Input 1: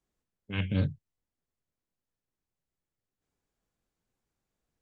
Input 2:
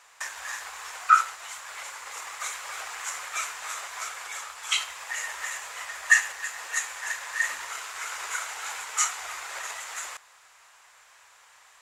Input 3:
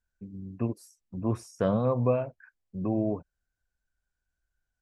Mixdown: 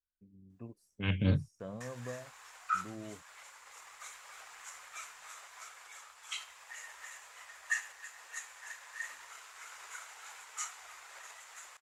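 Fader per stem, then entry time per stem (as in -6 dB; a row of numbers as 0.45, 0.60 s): -0.5, -15.0, -18.0 dB; 0.50, 1.60, 0.00 s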